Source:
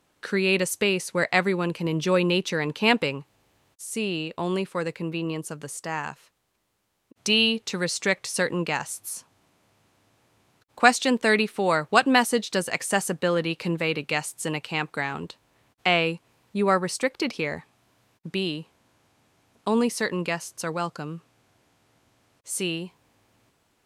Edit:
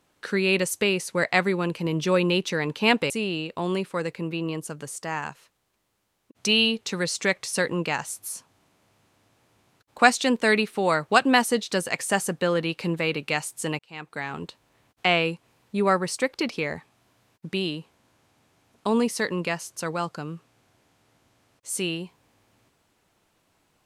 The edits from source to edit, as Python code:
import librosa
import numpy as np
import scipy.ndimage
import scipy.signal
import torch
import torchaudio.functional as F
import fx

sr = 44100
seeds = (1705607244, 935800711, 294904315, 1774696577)

y = fx.edit(x, sr, fx.cut(start_s=3.1, length_s=0.81),
    fx.fade_in_span(start_s=14.6, length_s=0.66), tone=tone)